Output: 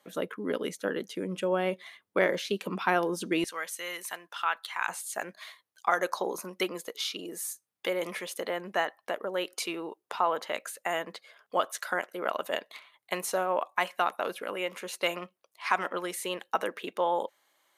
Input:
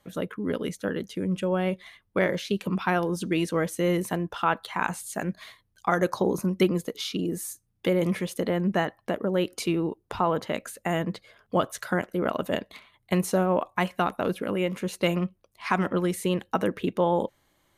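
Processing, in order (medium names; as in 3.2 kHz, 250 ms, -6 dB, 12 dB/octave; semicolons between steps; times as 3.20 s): high-pass 310 Hz 12 dB/octave, from 3.44 s 1.3 kHz, from 4.88 s 620 Hz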